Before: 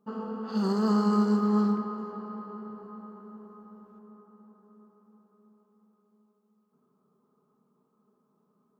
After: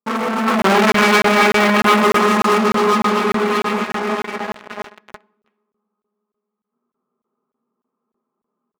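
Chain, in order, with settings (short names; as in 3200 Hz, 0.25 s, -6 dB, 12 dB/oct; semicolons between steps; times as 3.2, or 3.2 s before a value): LPF 2700 Hz 24 dB/oct; feedback echo 62 ms, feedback 57%, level -23.5 dB; sample leveller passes 5; on a send at -2 dB: reverb RT60 0.65 s, pre-delay 4 ms; on the sum: sample leveller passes 3; AGC gain up to 15 dB; HPF 550 Hz 6 dB/oct; crackling interface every 0.30 s, samples 1024, zero, from 0.62; gain -2.5 dB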